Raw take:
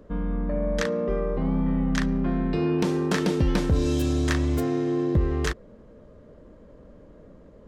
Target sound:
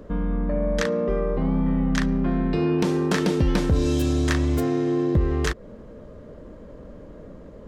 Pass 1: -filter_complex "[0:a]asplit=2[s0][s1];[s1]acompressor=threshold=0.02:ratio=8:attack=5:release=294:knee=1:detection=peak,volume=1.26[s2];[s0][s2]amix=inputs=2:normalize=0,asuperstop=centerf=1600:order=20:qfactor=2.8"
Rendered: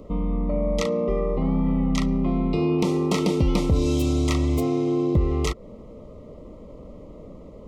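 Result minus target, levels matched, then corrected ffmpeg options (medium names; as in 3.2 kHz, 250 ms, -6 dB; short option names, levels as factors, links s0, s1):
2 kHz band -6.0 dB
-filter_complex "[0:a]asplit=2[s0][s1];[s1]acompressor=threshold=0.02:ratio=8:attack=5:release=294:knee=1:detection=peak,volume=1.26[s2];[s0][s2]amix=inputs=2:normalize=0"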